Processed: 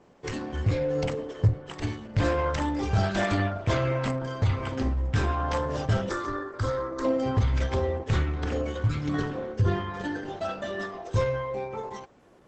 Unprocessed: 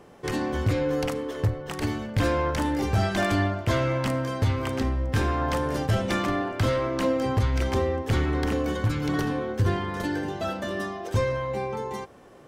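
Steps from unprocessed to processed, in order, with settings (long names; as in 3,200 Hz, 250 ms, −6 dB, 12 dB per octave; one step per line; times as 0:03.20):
0:00.94–0:01.60: dynamic equaliser 150 Hz, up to +5 dB, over −37 dBFS, Q 1
noise reduction from a noise print of the clip's start 6 dB
0:06.09–0:07.05: phaser with its sweep stopped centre 700 Hz, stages 6
Opus 12 kbit/s 48,000 Hz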